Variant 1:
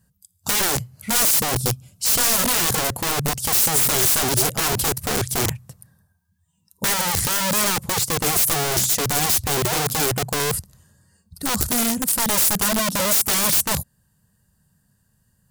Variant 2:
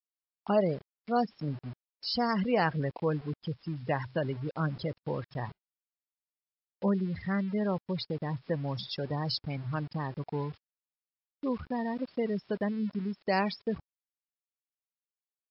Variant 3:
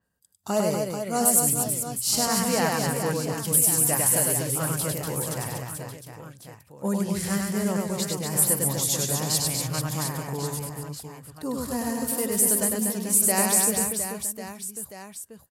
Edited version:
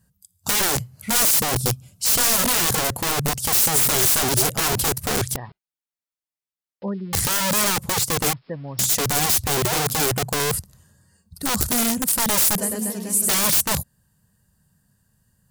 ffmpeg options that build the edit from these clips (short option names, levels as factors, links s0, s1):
-filter_complex "[1:a]asplit=2[s0][s1];[0:a]asplit=4[s2][s3][s4][s5];[s2]atrim=end=5.362[s6];[s0]atrim=start=5.358:end=7.132[s7];[s3]atrim=start=7.128:end=8.332[s8];[s1]atrim=start=8.328:end=8.792[s9];[s4]atrim=start=8.788:end=12.582[s10];[2:a]atrim=start=12.578:end=13.292[s11];[s5]atrim=start=13.288[s12];[s6][s7]acrossfade=d=0.004:c1=hsin:c2=hsin[s13];[s13][s8]acrossfade=d=0.004:c1=hsin:c2=hsin[s14];[s14][s9]acrossfade=d=0.004:c1=hsin:c2=hsin[s15];[s15][s10]acrossfade=d=0.004:c1=hsin:c2=hsin[s16];[s16][s11]acrossfade=d=0.004:c1=hsin:c2=hsin[s17];[s17][s12]acrossfade=d=0.004:c1=hsin:c2=hsin"